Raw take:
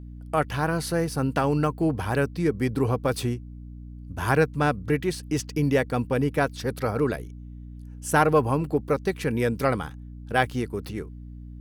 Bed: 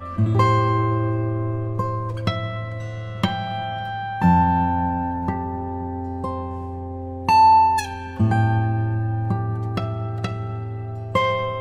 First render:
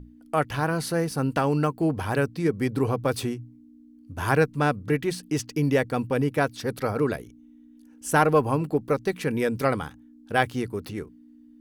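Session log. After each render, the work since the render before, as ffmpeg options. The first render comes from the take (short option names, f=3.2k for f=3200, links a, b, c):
-af "bandreject=f=60:t=h:w=6,bandreject=f=120:t=h:w=6,bandreject=f=180:t=h:w=6"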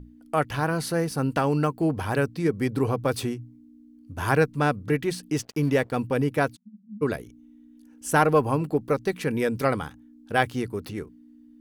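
-filter_complex "[0:a]asettb=1/sr,asplit=3[a][b][c];[a]atrim=end=5.374[d];[b]atrim=start=5.37:end=5.96,asetpts=PTS-STARTPTS,afade=t=in:d=0.004:c=qsin,afade=t=out:st=0.586:d=0.004:c=qsin,aeval=exprs='sgn(val(0))*max(abs(val(0))-0.00501,0)':c=same[e];[c]atrim=start=5.956[f];[d][e]acrossfade=d=0.004:c1=hsin:c2=qsin[g];[g][f]acrossfade=d=0.004:c1=qsin:c2=hsin,asplit=3[h][i][j];[h]afade=t=out:st=6.55:d=0.02[k];[i]asuperpass=centerf=200:order=12:qfactor=4.5,afade=t=in:st=6.55:d=0.02,afade=t=out:st=7.01:d=0.02[l];[j]afade=t=in:st=7.01:d=0.02[m];[k][l][m]amix=inputs=3:normalize=0"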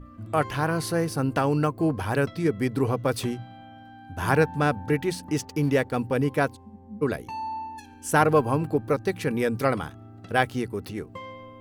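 -filter_complex "[1:a]volume=-20dB[a];[0:a][a]amix=inputs=2:normalize=0"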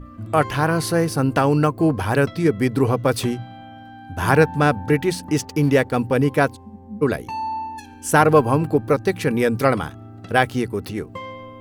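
-af "volume=6dB,alimiter=limit=-1dB:level=0:latency=1"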